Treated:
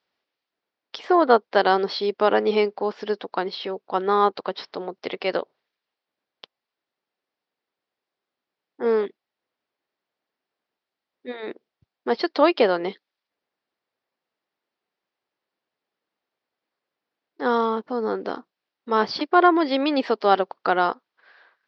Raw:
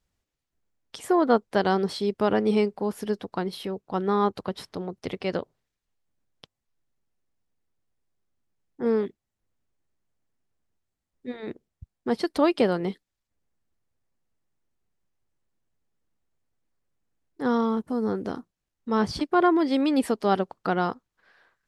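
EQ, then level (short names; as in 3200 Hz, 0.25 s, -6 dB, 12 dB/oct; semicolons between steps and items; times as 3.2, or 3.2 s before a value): HPF 420 Hz 12 dB/oct; steep low-pass 5100 Hz 48 dB/oct; +6.5 dB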